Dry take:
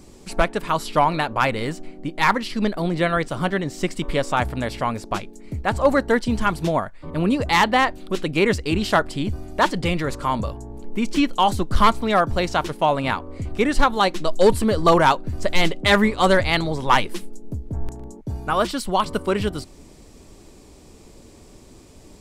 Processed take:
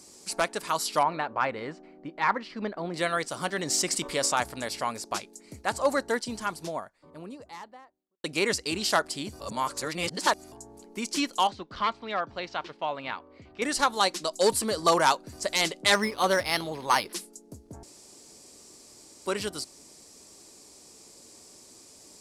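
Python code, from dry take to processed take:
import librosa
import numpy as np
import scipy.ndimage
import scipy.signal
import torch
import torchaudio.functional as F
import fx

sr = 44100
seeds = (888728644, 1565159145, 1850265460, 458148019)

y = fx.lowpass(x, sr, hz=1900.0, slope=12, at=(1.03, 2.94))
y = fx.env_flatten(y, sr, amount_pct=50, at=(3.58, 4.42))
y = fx.studio_fade_out(y, sr, start_s=5.58, length_s=2.66)
y = fx.ladder_lowpass(y, sr, hz=4000.0, resonance_pct=25, at=(11.47, 13.62))
y = fx.resample_linear(y, sr, factor=6, at=(15.94, 17.13))
y = fx.edit(y, sr, fx.reverse_span(start_s=9.4, length_s=1.12),
    fx.room_tone_fill(start_s=17.83, length_s=1.43), tone=tone)
y = fx.highpass(y, sr, hz=470.0, slope=6)
y = fx.band_shelf(y, sr, hz=7200.0, db=10.0, octaves=1.7)
y = y * librosa.db_to_amplitude(-5.0)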